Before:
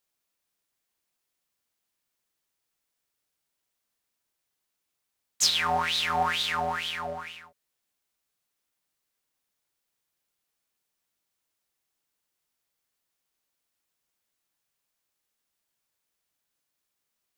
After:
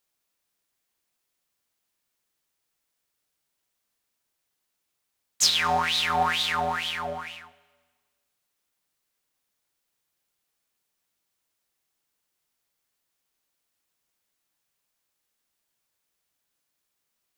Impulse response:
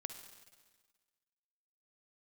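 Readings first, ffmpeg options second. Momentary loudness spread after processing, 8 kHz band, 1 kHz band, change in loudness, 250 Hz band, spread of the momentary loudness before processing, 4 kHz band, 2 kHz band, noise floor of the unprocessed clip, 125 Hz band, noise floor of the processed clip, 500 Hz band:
13 LU, +2.5 dB, +2.5 dB, +2.5 dB, +3.0 dB, 13 LU, +2.5 dB, +2.5 dB, -82 dBFS, +2.5 dB, -80 dBFS, +2.0 dB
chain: -filter_complex "[0:a]asplit=2[a][b];[1:a]atrim=start_sample=2205[c];[b][c]afir=irnorm=-1:irlink=0,volume=-7dB[d];[a][d]amix=inputs=2:normalize=0"

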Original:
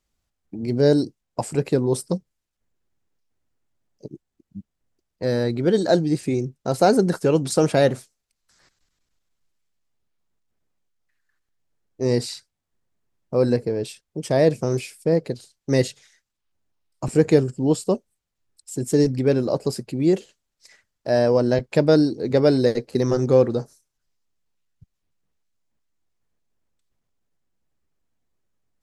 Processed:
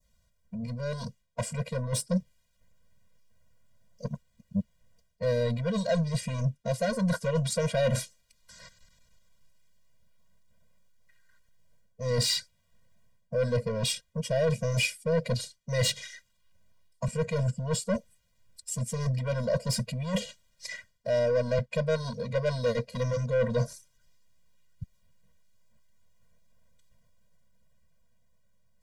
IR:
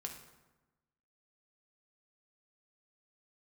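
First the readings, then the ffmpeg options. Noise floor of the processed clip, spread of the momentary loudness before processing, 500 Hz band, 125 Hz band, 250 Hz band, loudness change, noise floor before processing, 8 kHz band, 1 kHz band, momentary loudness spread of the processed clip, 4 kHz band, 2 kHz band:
-70 dBFS, 12 LU, -9.5 dB, -4.0 dB, -12.0 dB, -8.5 dB, -80 dBFS, -0.5 dB, -10.0 dB, 13 LU, +0.5 dB, -2.5 dB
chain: -af "areverse,acompressor=threshold=-31dB:ratio=8,areverse,asoftclip=type=tanh:threshold=-31.5dB,dynaudnorm=f=290:g=11:m=4dB,adynamicequalizer=threshold=0.00158:dfrequency=2600:dqfactor=0.83:tfrequency=2600:tqfactor=0.83:attack=5:release=100:ratio=0.375:range=2.5:mode=boostabove:tftype=bell,afftfilt=real='re*eq(mod(floor(b*sr/1024/230),2),0)':imag='im*eq(mod(floor(b*sr/1024/230),2),0)':win_size=1024:overlap=0.75,volume=8dB"

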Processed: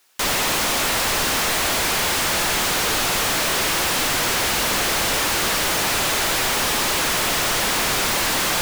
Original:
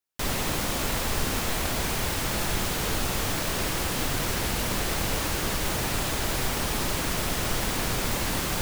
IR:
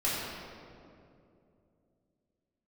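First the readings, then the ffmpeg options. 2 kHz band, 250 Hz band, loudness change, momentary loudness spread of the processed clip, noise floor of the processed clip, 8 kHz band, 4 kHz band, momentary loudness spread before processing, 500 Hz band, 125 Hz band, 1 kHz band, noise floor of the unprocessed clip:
+10.0 dB, +2.0 dB, +8.5 dB, 0 LU, -21 dBFS, +9.5 dB, +10.0 dB, 0 LU, +6.0 dB, -2.5 dB, +9.0 dB, -29 dBFS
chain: -filter_complex "[0:a]asplit=2[a][b];[b]highpass=f=720:p=1,volume=37dB,asoftclip=type=tanh:threshold=-14dB[c];[a][c]amix=inputs=2:normalize=0,lowpass=f=8k:p=1,volume=-6dB"

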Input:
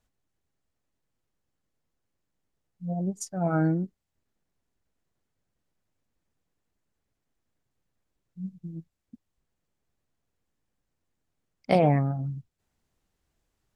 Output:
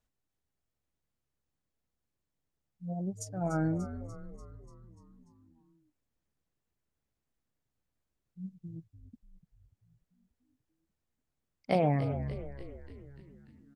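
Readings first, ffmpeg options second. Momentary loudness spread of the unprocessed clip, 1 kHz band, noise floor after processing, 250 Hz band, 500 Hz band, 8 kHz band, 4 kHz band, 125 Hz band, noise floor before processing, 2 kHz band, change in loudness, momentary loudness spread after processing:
19 LU, -6.0 dB, under -85 dBFS, -6.0 dB, -5.5 dB, -5.5 dB, -5.5 dB, -5.5 dB, -81 dBFS, -5.5 dB, -7.0 dB, 22 LU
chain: -filter_complex "[0:a]asplit=8[a][b][c][d][e][f][g][h];[b]adelay=293,afreqshift=-70,volume=-11.5dB[i];[c]adelay=586,afreqshift=-140,volume=-15.9dB[j];[d]adelay=879,afreqshift=-210,volume=-20.4dB[k];[e]adelay=1172,afreqshift=-280,volume=-24.8dB[l];[f]adelay=1465,afreqshift=-350,volume=-29.2dB[m];[g]adelay=1758,afreqshift=-420,volume=-33.7dB[n];[h]adelay=2051,afreqshift=-490,volume=-38.1dB[o];[a][i][j][k][l][m][n][o]amix=inputs=8:normalize=0,volume=-6dB"

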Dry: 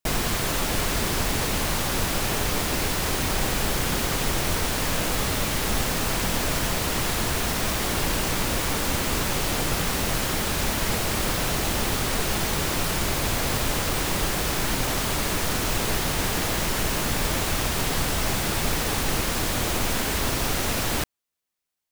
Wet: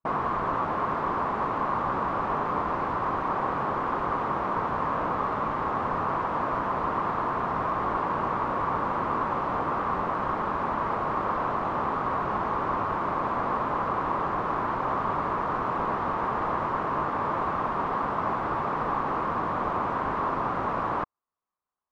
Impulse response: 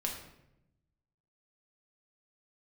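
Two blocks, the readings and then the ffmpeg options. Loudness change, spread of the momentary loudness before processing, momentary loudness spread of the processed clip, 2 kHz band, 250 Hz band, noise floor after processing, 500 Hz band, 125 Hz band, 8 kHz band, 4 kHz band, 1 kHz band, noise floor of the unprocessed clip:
-3.5 dB, 0 LU, 1 LU, -7.0 dB, -4.5 dB, -31 dBFS, -1.5 dB, -9.0 dB, under -35 dB, under -20 dB, +6.0 dB, -27 dBFS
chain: -af "afftfilt=real='re*lt(hypot(re,im),0.251)':imag='im*lt(hypot(re,im),0.251)':win_size=1024:overlap=0.75,lowpass=f=1.1k:t=q:w=4.6,volume=-3.5dB"

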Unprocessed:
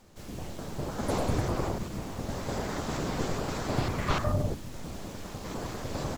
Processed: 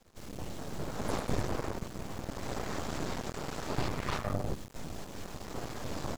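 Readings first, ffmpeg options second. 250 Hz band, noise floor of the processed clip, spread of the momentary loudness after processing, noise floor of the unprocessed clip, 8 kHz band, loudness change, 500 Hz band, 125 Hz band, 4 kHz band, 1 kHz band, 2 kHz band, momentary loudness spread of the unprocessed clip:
-5.0 dB, -48 dBFS, 10 LU, -43 dBFS, -3.5 dB, -5.0 dB, -5.0 dB, -6.0 dB, -3.5 dB, -4.5 dB, -3.5 dB, 11 LU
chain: -af "aeval=exprs='max(val(0),0)':c=same"

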